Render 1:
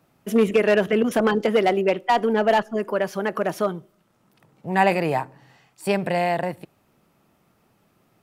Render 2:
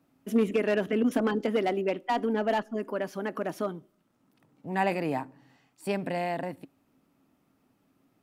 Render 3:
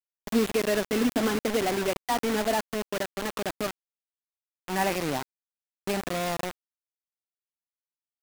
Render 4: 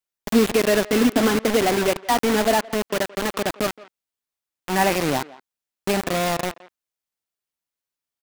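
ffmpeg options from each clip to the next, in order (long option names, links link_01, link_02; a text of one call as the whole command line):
ffmpeg -i in.wav -af "equalizer=frequency=270:width=4.7:gain=14.5,volume=-9dB" out.wav
ffmpeg -i in.wav -af "acrusher=bits=4:mix=0:aa=0.000001" out.wav
ffmpeg -i in.wav -filter_complex "[0:a]asplit=2[link_01][link_02];[link_02]adelay=170,highpass=300,lowpass=3400,asoftclip=type=hard:threshold=-23dB,volume=-19dB[link_03];[link_01][link_03]amix=inputs=2:normalize=0,volume=7dB" out.wav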